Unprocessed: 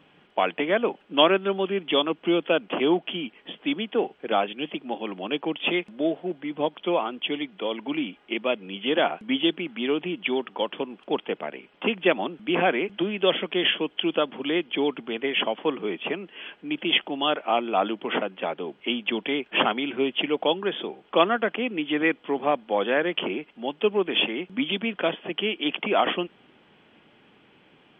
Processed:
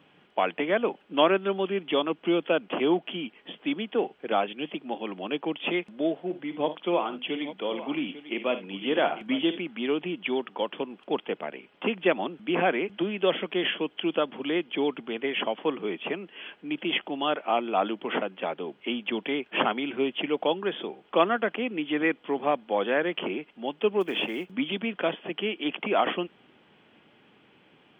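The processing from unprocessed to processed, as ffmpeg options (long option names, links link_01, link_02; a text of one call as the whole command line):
ffmpeg -i in.wav -filter_complex "[0:a]asettb=1/sr,asplit=3[link_01][link_02][link_03];[link_01]atrim=end=6.254[link_04];[link_02]atrim=start=6.25:end=9.59,asetpts=PTS-STARTPTS,afade=type=in:duration=0.004:curve=qsin,afade=type=out:start_time=3.336:duration=0.004:curve=qsin,aecho=1:1:52|72|847:0.251|0.126|0.2,atrim=end_sample=147294[link_05];[link_03]atrim=start=9.586[link_06];[link_04][link_05]acrossfade=duration=0.004:curve1=hsin:curve2=qsin[link_07];[link_07][link_06]acrossfade=duration=0.004:curve1=qsin:curve2=hsin,asplit=3[link_08][link_09][link_10];[link_08]afade=type=out:start_time=24:duration=0.02[link_11];[link_09]acrusher=bits=7:mode=log:mix=0:aa=0.000001,afade=type=in:start_time=24:duration=0.02,afade=type=out:start_time=24.5:duration=0.02[link_12];[link_10]afade=type=in:start_time=24.5:duration=0.02[link_13];[link_11][link_12][link_13]amix=inputs=3:normalize=0,acrossover=split=2900[link_14][link_15];[link_15]acompressor=threshold=-39dB:ratio=4:attack=1:release=60[link_16];[link_14][link_16]amix=inputs=2:normalize=0,highpass=56,volume=-2dB" out.wav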